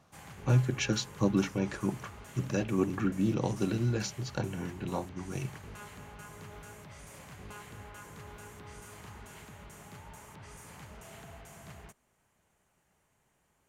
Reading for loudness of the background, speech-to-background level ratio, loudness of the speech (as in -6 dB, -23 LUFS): -49.0 LUFS, 17.0 dB, -32.0 LUFS